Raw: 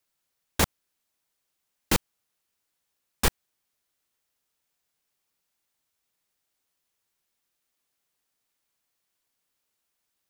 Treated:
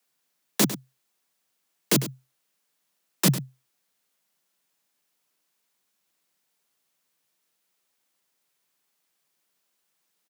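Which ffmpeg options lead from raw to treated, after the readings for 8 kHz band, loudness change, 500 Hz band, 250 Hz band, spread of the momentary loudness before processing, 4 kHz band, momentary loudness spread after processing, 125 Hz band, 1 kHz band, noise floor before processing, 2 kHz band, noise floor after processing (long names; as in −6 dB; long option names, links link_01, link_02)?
+4.0 dB, +3.0 dB, +2.5 dB, +7.0 dB, 1 LU, +2.5 dB, 12 LU, +6.0 dB, −3.5 dB, −80 dBFS, −2.0 dB, −76 dBFS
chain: -filter_complex "[0:a]acrossover=split=330|3000[link_01][link_02][link_03];[link_02]acompressor=threshold=-35dB:ratio=6[link_04];[link_01][link_04][link_03]amix=inputs=3:normalize=0,afreqshift=130,asplit=2[link_05][link_06];[link_06]aecho=0:1:101:0.224[link_07];[link_05][link_07]amix=inputs=2:normalize=0,volume=4dB"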